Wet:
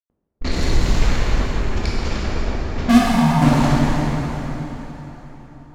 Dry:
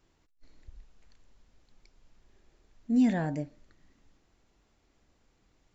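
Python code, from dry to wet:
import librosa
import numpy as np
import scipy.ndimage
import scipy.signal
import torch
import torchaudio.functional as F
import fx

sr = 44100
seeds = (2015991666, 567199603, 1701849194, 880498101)

y = fx.fuzz(x, sr, gain_db=55.0, gate_db=-58.0)
y = fx.env_lowpass(y, sr, base_hz=360.0, full_db=-16.0)
y = fx.double_bandpass(y, sr, hz=360.0, octaves=2.6, at=(2.97, 3.41), fade=0.02)
y = fx.rev_plate(y, sr, seeds[0], rt60_s=4.1, hf_ratio=0.8, predelay_ms=0, drr_db=-6.5)
y = y * 10.0 ** (-1.0 / 20.0)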